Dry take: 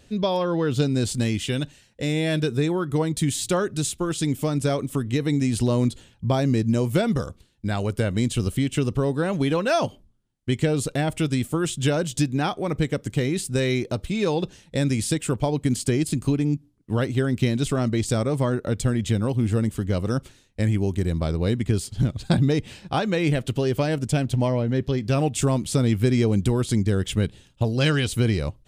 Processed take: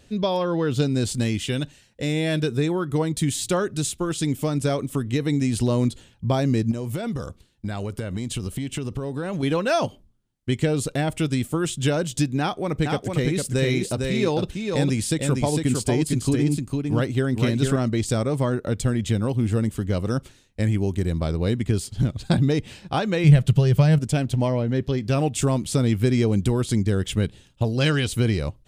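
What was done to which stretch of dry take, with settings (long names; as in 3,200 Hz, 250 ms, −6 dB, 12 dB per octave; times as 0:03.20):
0:06.71–0:09.43: downward compressor 12 to 1, threshold −23 dBFS
0:12.40–0:17.76: single-tap delay 454 ms −4 dB
0:23.24–0:23.99: low shelf with overshoot 210 Hz +6.5 dB, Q 3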